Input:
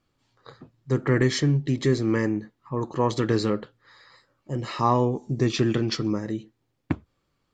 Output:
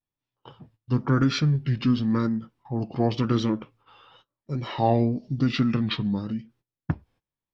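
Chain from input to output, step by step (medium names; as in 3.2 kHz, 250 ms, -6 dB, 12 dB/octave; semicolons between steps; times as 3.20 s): formant shift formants -5 st; vibrato 0.95 Hz 90 cents; gate -56 dBFS, range -20 dB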